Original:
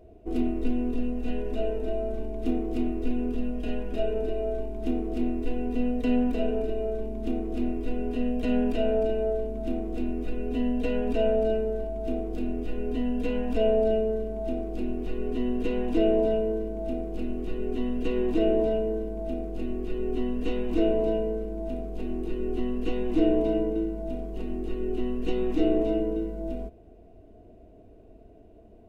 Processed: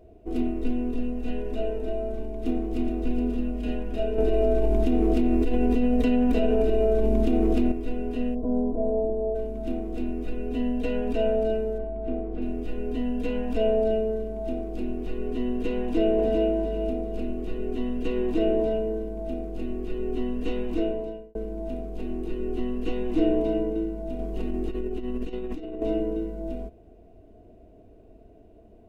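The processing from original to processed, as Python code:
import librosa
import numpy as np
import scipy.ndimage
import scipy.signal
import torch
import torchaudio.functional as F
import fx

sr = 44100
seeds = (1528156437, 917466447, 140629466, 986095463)

y = fx.echo_throw(x, sr, start_s=2.13, length_s=0.78, ms=420, feedback_pct=70, wet_db=-7.0)
y = fx.env_flatten(y, sr, amount_pct=100, at=(4.18, 7.72))
y = fx.ellip_lowpass(y, sr, hz=1000.0, order=4, stop_db=70, at=(8.34, 9.34), fade=0.02)
y = fx.lowpass(y, sr, hz=2200.0, slope=12, at=(11.78, 12.42))
y = fx.echo_throw(y, sr, start_s=15.78, length_s=0.72, ms=400, feedback_pct=30, wet_db=-4.5)
y = fx.over_compress(y, sr, threshold_db=-30.0, ratio=-1.0, at=(24.19, 25.82))
y = fx.edit(y, sr, fx.fade_out_span(start_s=20.63, length_s=0.72), tone=tone)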